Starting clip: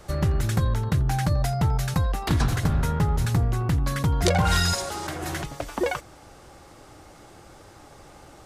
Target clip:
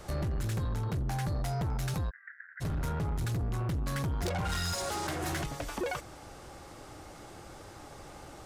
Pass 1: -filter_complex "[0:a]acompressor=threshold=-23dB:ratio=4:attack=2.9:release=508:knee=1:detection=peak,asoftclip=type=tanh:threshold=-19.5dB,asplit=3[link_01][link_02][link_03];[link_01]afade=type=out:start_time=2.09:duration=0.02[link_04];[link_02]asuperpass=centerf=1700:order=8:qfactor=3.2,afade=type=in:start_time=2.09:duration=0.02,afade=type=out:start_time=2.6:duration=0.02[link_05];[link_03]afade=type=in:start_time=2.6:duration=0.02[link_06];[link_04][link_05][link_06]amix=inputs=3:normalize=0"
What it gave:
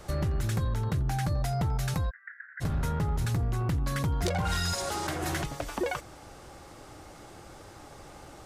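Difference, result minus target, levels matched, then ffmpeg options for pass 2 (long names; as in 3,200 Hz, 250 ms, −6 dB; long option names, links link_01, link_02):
soft clipping: distortion −11 dB
-filter_complex "[0:a]acompressor=threshold=-23dB:ratio=4:attack=2.9:release=508:knee=1:detection=peak,asoftclip=type=tanh:threshold=-28.5dB,asplit=3[link_01][link_02][link_03];[link_01]afade=type=out:start_time=2.09:duration=0.02[link_04];[link_02]asuperpass=centerf=1700:order=8:qfactor=3.2,afade=type=in:start_time=2.09:duration=0.02,afade=type=out:start_time=2.6:duration=0.02[link_05];[link_03]afade=type=in:start_time=2.6:duration=0.02[link_06];[link_04][link_05][link_06]amix=inputs=3:normalize=0"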